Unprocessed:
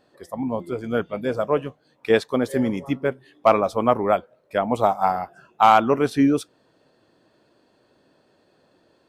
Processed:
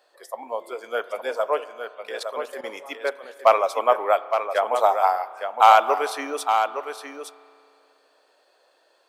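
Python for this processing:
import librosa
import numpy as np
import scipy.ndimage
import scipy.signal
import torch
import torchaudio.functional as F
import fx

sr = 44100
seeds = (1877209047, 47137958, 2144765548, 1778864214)

p1 = scipy.signal.sosfilt(scipy.signal.butter(4, 510.0, 'highpass', fs=sr, output='sos'), x)
p2 = fx.high_shelf(p1, sr, hz=5400.0, db=4.5)
p3 = fx.level_steps(p2, sr, step_db=17, at=(1.64, 2.64))
p4 = p3 + fx.echo_single(p3, sr, ms=863, db=-7.5, dry=0)
p5 = fx.rev_spring(p4, sr, rt60_s=2.4, pass_ms=(32,), chirp_ms=65, drr_db=16.0)
y = p5 * 10.0 ** (1.0 / 20.0)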